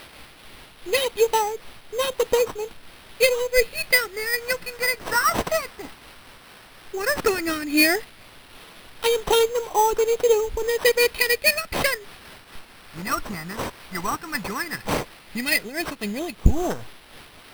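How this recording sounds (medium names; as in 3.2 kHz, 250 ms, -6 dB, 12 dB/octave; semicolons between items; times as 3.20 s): a quantiser's noise floor 8-bit, dither triangular; phasing stages 4, 0.13 Hz, lowest notch 520–1800 Hz; aliases and images of a low sample rate 6.9 kHz, jitter 0%; random flutter of the level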